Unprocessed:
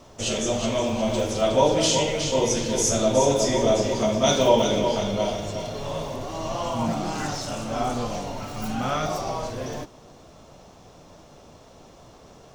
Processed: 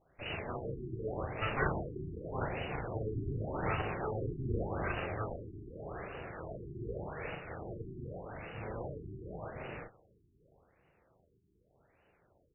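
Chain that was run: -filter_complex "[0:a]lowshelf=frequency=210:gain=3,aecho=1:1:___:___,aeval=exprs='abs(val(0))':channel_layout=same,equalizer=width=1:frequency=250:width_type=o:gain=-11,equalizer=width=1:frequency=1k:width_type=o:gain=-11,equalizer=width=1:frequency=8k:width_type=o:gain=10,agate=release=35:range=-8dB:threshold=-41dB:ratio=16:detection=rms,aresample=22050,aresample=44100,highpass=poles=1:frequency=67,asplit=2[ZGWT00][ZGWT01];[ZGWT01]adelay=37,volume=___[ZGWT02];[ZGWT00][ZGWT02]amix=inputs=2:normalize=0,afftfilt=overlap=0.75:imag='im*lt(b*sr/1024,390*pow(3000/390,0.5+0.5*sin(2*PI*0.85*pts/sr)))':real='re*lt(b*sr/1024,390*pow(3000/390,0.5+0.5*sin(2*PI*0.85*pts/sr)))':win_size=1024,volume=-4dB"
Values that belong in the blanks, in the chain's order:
804, 0.15, -5.5dB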